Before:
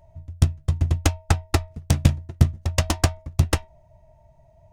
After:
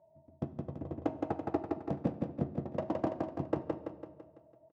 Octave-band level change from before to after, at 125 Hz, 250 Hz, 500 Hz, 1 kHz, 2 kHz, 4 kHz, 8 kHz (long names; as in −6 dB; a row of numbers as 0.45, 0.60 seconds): −20.5 dB, −5.5 dB, −2.5 dB, −8.5 dB, −21.0 dB, below −30 dB, below −40 dB